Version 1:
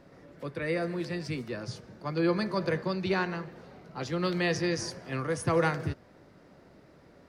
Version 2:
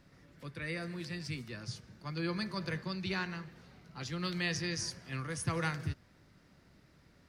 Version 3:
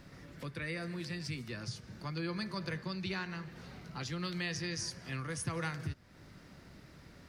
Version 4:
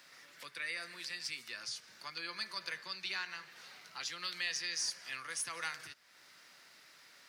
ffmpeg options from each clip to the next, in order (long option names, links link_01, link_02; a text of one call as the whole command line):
ffmpeg -i in.wav -af "equalizer=frequency=530:width_type=o:width=2.5:gain=-14" out.wav
ffmpeg -i in.wav -af "acompressor=threshold=-51dB:ratio=2,volume=8dB" out.wav
ffmpeg -i in.wav -filter_complex "[0:a]aderivative,asplit=2[link_01][link_02];[link_02]highpass=frequency=720:poles=1,volume=9dB,asoftclip=type=tanh:threshold=-27dB[link_03];[link_01][link_03]amix=inputs=2:normalize=0,lowpass=frequency=2000:poles=1,volume=-6dB,volume=11dB" out.wav